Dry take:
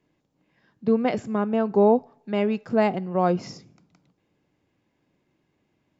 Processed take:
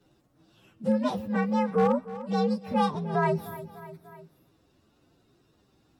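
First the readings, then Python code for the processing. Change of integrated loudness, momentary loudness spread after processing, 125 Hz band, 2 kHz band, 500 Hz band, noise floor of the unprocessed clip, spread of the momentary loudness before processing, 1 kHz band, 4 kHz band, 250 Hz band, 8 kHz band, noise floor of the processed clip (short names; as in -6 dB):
-3.5 dB, 16 LU, 0.0 dB, -1.0 dB, -5.5 dB, -73 dBFS, 10 LU, -1.0 dB, -0.5 dB, -3.0 dB, n/a, -67 dBFS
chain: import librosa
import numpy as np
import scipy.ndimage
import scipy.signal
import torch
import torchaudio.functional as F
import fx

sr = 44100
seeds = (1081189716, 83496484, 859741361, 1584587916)

p1 = fx.partial_stretch(x, sr, pct=127)
p2 = np.clip(10.0 ** (12.5 / 20.0) * p1, -1.0, 1.0) / 10.0 ** (12.5 / 20.0)
p3 = p2 + fx.echo_feedback(p2, sr, ms=298, feedback_pct=40, wet_db=-18.0, dry=0)
p4 = fx.band_squash(p3, sr, depth_pct=40)
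y = p4 * librosa.db_to_amplitude(-2.0)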